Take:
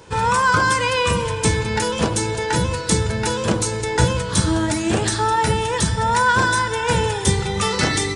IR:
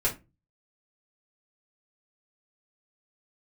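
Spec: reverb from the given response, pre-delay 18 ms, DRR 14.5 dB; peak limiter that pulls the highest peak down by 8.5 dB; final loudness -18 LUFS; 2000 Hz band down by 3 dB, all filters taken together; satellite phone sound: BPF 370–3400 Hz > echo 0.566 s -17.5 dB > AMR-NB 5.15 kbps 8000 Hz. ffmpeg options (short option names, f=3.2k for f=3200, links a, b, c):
-filter_complex "[0:a]equalizer=f=2k:t=o:g=-4,alimiter=limit=-12.5dB:level=0:latency=1,asplit=2[a][b];[1:a]atrim=start_sample=2205,adelay=18[c];[b][c]afir=irnorm=-1:irlink=0,volume=-23.5dB[d];[a][d]amix=inputs=2:normalize=0,highpass=370,lowpass=3.4k,aecho=1:1:566:0.133,volume=8dB" -ar 8000 -c:a libopencore_amrnb -b:a 5150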